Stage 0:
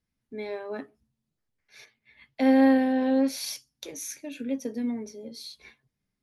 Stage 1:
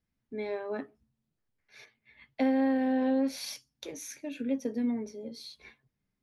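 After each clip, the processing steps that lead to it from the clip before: treble shelf 4.6 kHz -9 dB; compression 6:1, threshold -23 dBFS, peak gain reduction 8 dB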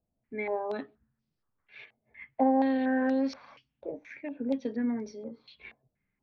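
distance through air 150 m; step-sequenced low-pass 4.2 Hz 660–5200 Hz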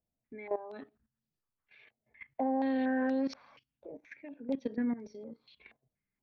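level held to a coarse grid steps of 15 dB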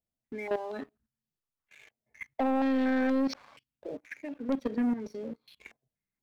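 waveshaping leveller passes 2

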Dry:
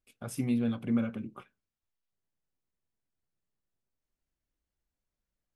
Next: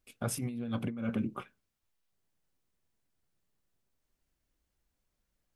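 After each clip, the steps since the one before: compressor with a negative ratio -36 dBFS, ratio -1; trim +1.5 dB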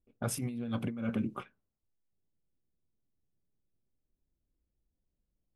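level-controlled noise filter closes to 410 Hz, open at -32.5 dBFS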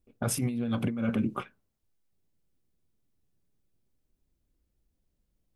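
peak limiter -25 dBFS, peak gain reduction 5 dB; trim +6.5 dB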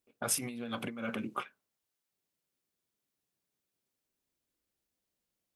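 high-pass 870 Hz 6 dB/octave; trim +1.5 dB

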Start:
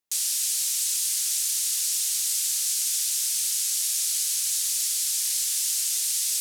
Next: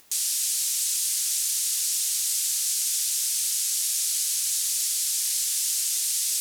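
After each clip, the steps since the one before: upward compressor, threshold -33 dBFS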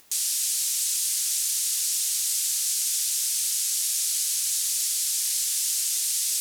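no audible change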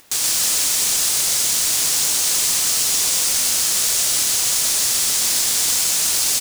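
square wave that keeps the level; delay 125 ms -3 dB; trim +3 dB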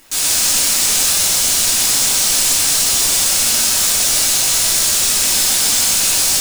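simulated room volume 220 m³, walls mixed, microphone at 2.8 m; trim -3.5 dB

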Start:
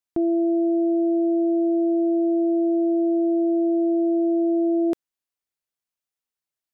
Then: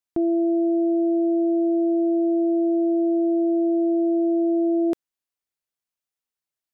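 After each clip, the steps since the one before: no audible change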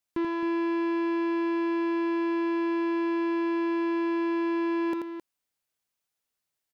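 saturation -29 dBFS, distortion -10 dB; loudspeakers at several distances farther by 29 m -5 dB, 91 m -10 dB; trim +3.5 dB

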